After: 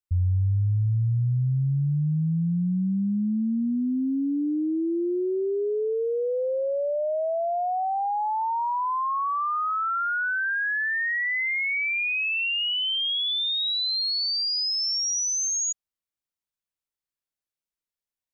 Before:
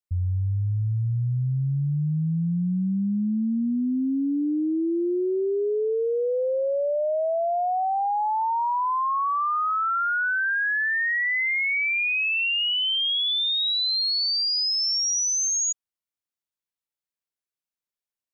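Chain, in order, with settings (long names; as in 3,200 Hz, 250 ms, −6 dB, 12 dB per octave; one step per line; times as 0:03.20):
low-shelf EQ 100 Hz +8 dB
level −2 dB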